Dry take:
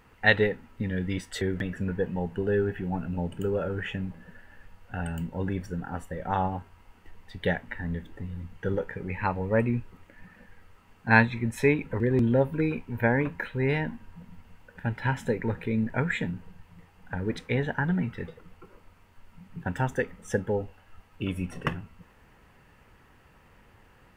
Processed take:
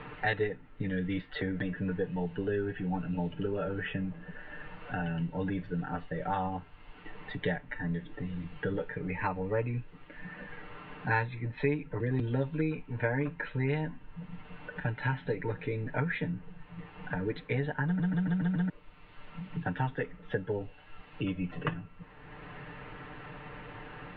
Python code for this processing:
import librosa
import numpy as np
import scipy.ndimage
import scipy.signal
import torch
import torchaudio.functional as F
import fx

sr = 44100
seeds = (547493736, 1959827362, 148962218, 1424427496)

y = fx.edit(x, sr, fx.stutter_over(start_s=17.85, slice_s=0.14, count=6), tone=tone)
y = scipy.signal.sosfilt(scipy.signal.butter(12, 4100.0, 'lowpass', fs=sr, output='sos'), y)
y = y + 0.93 * np.pad(y, (int(6.7 * sr / 1000.0), 0))[:len(y)]
y = fx.band_squash(y, sr, depth_pct=70)
y = y * 10.0 ** (-7.0 / 20.0)